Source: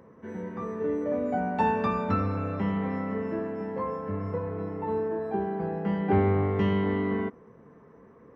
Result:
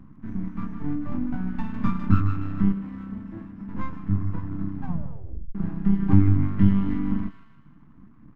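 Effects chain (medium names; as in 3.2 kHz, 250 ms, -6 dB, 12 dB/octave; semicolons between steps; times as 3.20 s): reverb removal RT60 0.96 s; 1.23–1.74 s: compression 4:1, threshold -30 dBFS, peak gain reduction 8.5 dB; peaking EQ 380 Hz -8 dB 1.2 oct; doubling 21 ms -12 dB; feedback echo behind a high-pass 156 ms, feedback 50%, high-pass 1.5 kHz, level -4 dB; half-wave rectifier; FFT filter 300 Hz 0 dB, 460 Hz -27 dB, 1.1 kHz -13 dB, 4.7 kHz -24 dB; 2.72–3.69 s: valve stage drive 24 dB, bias 0.75; 4.76 s: tape stop 0.79 s; loudness maximiser +18.5 dB; trim -2.5 dB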